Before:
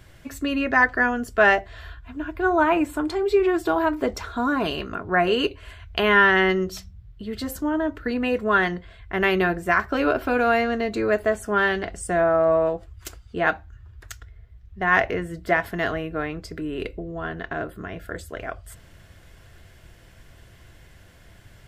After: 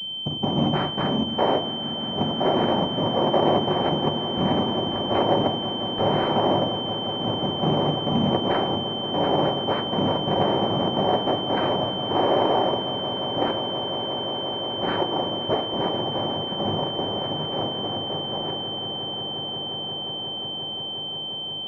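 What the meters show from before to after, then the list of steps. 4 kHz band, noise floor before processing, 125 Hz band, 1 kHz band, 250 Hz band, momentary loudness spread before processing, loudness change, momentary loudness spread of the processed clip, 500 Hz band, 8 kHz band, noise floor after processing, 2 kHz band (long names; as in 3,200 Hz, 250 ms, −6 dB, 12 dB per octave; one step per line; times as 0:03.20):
+12.5 dB, −50 dBFS, +6.5 dB, +0.5 dB, +1.0 dB, 16 LU, −1.5 dB, 7 LU, −0.5 dB, below −15 dB, −31 dBFS, −15.5 dB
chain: adaptive Wiener filter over 41 samples
treble cut that deepens with the level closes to 830 Hz, closed at −16 dBFS
parametric band 140 Hz −12.5 dB 0.83 octaves
in parallel at +2.5 dB: downward compressor, threshold −34 dBFS, peak gain reduction 17 dB
on the sum: soft clipping −19 dBFS, distortion −12 dB
cochlear-implant simulation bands 4
echo that builds up and dies away 177 ms, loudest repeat 8, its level −16.5 dB
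rectangular room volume 700 cubic metres, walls furnished, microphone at 1.1 metres
switching amplifier with a slow clock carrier 3,100 Hz
level +1.5 dB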